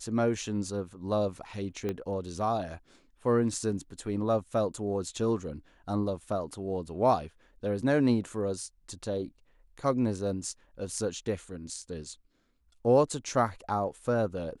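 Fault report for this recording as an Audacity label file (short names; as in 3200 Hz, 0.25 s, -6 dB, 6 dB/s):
1.890000	1.890000	pop -20 dBFS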